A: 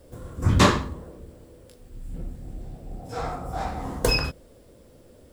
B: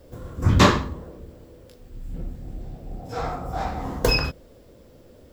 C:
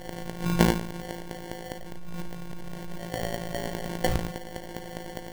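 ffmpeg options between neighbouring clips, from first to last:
ffmpeg -i in.wav -af "equalizer=frequency=9200:width_type=o:width=0.39:gain=-11,volume=2dB" out.wav
ffmpeg -i in.wav -af "aeval=exprs='val(0)+0.5*0.0422*sgn(val(0))':channel_layout=same,afftfilt=real='hypot(re,im)*cos(PI*b)':imag='0':win_size=1024:overlap=0.75,acrusher=samples=35:mix=1:aa=0.000001,volume=-2.5dB" out.wav

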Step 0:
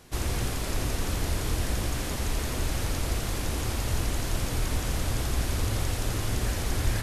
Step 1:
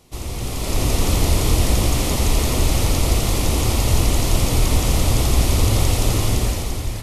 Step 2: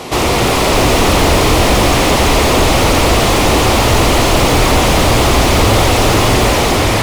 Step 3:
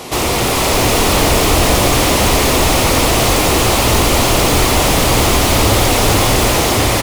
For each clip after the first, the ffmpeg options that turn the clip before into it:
ffmpeg -i in.wav -af "dynaudnorm=framelen=190:gausssize=7:maxgain=12dB,equalizer=frequency=1600:width_type=o:width=0.34:gain=-14" out.wav
ffmpeg -i in.wav -filter_complex "[0:a]acontrast=55,asplit=2[link_01][link_02];[link_02]highpass=frequency=720:poles=1,volume=35dB,asoftclip=type=tanh:threshold=-1.5dB[link_03];[link_01][link_03]amix=inputs=2:normalize=0,lowpass=frequency=1500:poles=1,volume=-6dB,volume=1dB" out.wav
ffmpeg -i in.wav -filter_complex "[0:a]asplit=2[link_01][link_02];[link_02]aecho=0:1:451:0.531[link_03];[link_01][link_03]amix=inputs=2:normalize=0,crystalizer=i=1:c=0,volume=-3.5dB" out.wav

